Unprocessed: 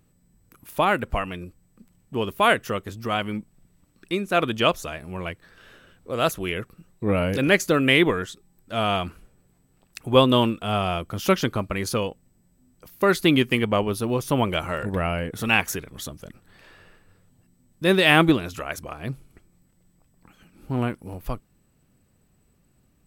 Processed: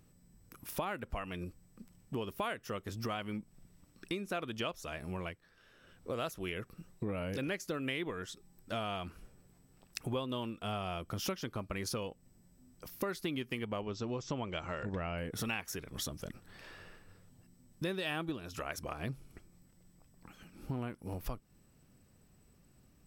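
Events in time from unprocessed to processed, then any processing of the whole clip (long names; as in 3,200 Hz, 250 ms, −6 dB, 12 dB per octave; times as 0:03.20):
0:05.03–0:06.12: duck −12.5 dB, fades 0.37 s
0:13.81–0:15.18: linear-phase brick-wall low-pass 8,000 Hz
0:17.97–0:18.55: notch filter 2,100 Hz, Q 7.2
whole clip: parametric band 5,400 Hz +6.5 dB 0.24 octaves; downward compressor 6 to 1, threshold −34 dBFS; level −1.5 dB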